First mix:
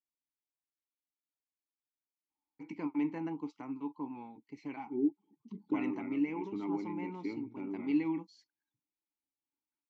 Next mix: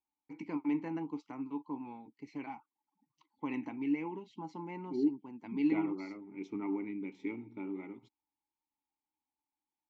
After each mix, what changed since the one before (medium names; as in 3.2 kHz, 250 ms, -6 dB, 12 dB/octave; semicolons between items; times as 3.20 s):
first voice: entry -2.30 s; second voice: add treble shelf 2.8 kHz +9 dB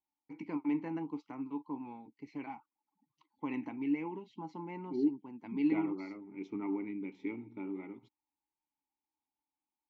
master: add distance through air 81 m